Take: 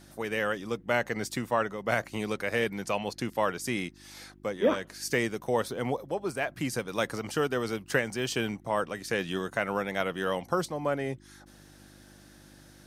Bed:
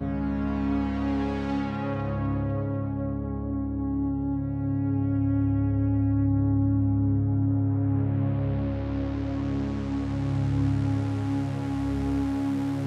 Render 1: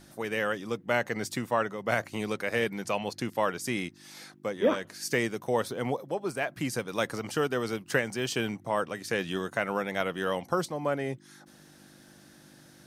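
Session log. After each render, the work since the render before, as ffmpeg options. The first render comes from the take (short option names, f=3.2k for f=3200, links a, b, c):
-af "bandreject=f=50:t=h:w=4,bandreject=f=100:t=h:w=4"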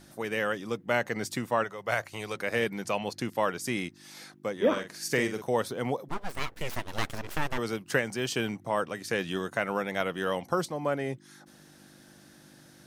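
-filter_complex "[0:a]asettb=1/sr,asplit=3[a][b][c];[a]atrim=end=1.644[d];[b]atrim=start=1.64:end=2.36,asetpts=PTS-STARTPTS,afade=t=in:d=0.004:c=qsin,afade=t=out:st=0.716:d=0.004:c=qsin,equalizer=f=240:w=1.2:g=-12[e];[c]atrim=start=2.356[f];[d][e]acrossfade=d=0.004:c1=hsin:c2=qsin[g];[g][f]acrossfade=d=0.004:c1=qsin:c2=hsin,asettb=1/sr,asplit=3[h][i][j];[h]atrim=end=4.724[k];[i]atrim=start=4.72:end=5.42,asetpts=PTS-STARTPTS,afade=t=in:d=0.004:c=qsin,afade=t=out:st=0.696:d=0.004:c=qsin,asplit=2[l][m];[m]adelay=46,volume=-8dB[n];[l][n]amix=inputs=2:normalize=0,atrim=end_sample=30870[o];[j]atrim=start=5.416[p];[k][o]acrossfade=d=0.004:c1=hsin:c2=qsin[q];[q][p]acrossfade=d=0.004:c1=qsin:c2=hsin,asplit=3[r][s][t];[r]afade=t=out:st=6.08:d=0.02[u];[s]aeval=exprs='abs(val(0))':c=same,afade=t=in:st=6.08:d=0.02,afade=t=out:st=7.57:d=0.02[v];[t]afade=t=in:st=7.57:d=0.02[w];[u][v][w]amix=inputs=3:normalize=0"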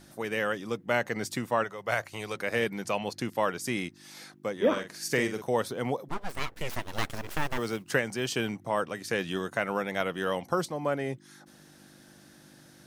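-filter_complex "[0:a]asettb=1/sr,asplit=3[a][b][c];[a]atrim=end=6.814[d];[b]atrim=start=6.81:end=7.9,asetpts=PTS-STARTPTS,afade=t=in:d=0.004:c=qsin,afade=t=out:st=1.086:d=0.004:c=qsin,acrusher=bits=6:mode=log:mix=0:aa=0.000001[e];[c]atrim=start=7.896[f];[d][e]acrossfade=d=0.004:c1=hsin:c2=qsin[g];[g][f]acrossfade=d=0.004:c1=qsin:c2=hsin"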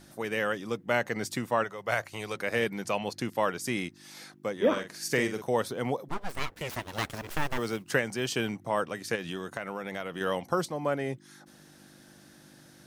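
-filter_complex "[0:a]asettb=1/sr,asplit=3[a][b][c];[a]atrim=end=6.504[d];[b]atrim=start=6.5:end=7.3,asetpts=PTS-STARTPTS,afade=t=in:d=0.004:c=qsin,afade=t=out:st=0.796:d=0.004:c=qsin,highpass=49[e];[c]atrim=start=7.296[f];[d][e]acrossfade=d=0.004:c1=hsin:c2=qsin[g];[g][f]acrossfade=d=0.004:c1=qsin:c2=hsin,asettb=1/sr,asplit=3[h][i][j];[h]atrim=end=9.154[k];[i]atrim=start=9.15:end=10.21,asetpts=PTS-STARTPTS,afade=t=in:d=0.004:c=qsin,afade=t=out:st=1.056:d=0.004:c=qsin,acompressor=threshold=-31dB:ratio=4:attack=3.2:release=140:knee=1:detection=peak[l];[j]atrim=start=10.206[m];[k][l]acrossfade=d=0.004:c1=hsin:c2=qsin[n];[n][m]acrossfade=d=0.004:c1=qsin:c2=hsin"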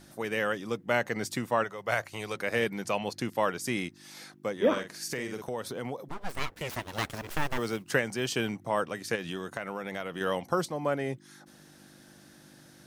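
-filter_complex "[0:a]asettb=1/sr,asplit=3[a][b][c];[a]atrim=end=4.924[d];[b]atrim=start=4.92:end=6.21,asetpts=PTS-STARTPTS,afade=t=in:d=0.004:c=qsin,afade=t=out:st=1.286:d=0.004:c=qsin,acompressor=threshold=-32dB:ratio=3:attack=3.2:release=140:knee=1:detection=peak[e];[c]atrim=start=6.206[f];[d][e]acrossfade=d=0.004:c1=hsin:c2=qsin[g];[g][f]acrossfade=d=0.004:c1=qsin:c2=hsin"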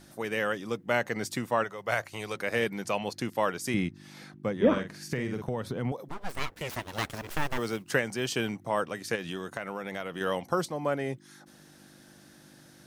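-filter_complex "[0:a]asettb=1/sr,asplit=3[a][b][c];[a]atrim=end=3.744[d];[b]atrim=start=3.74:end=5.92,asetpts=PTS-STARTPTS,afade=t=in:d=0.004:c=qsin,afade=t=out:st=2.176:d=0.004:c=qsin,bass=f=250:g=11,treble=f=4k:g=-8[e];[c]atrim=start=5.916[f];[d][e]acrossfade=d=0.004:c1=hsin:c2=qsin[g];[g][f]acrossfade=d=0.004:c1=qsin:c2=hsin"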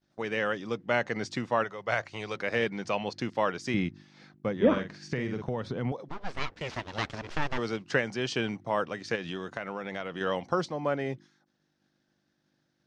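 -af "agate=range=-33dB:threshold=-41dB:ratio=3:detection=peak,lowpass=f=5.8k:w=0.5412,lowpass=f=5.8k:w=1.3066"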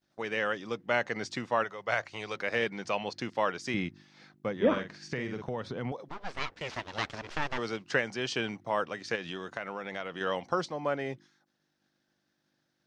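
-af "lowshelf=f=360:g=-6"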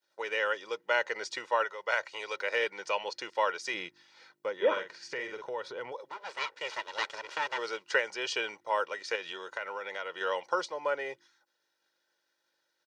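-af "highpass=530,aecho=1:1:2.1:0.63"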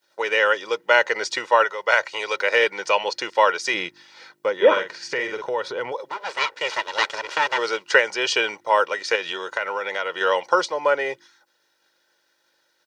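-af "volume=11.5dB"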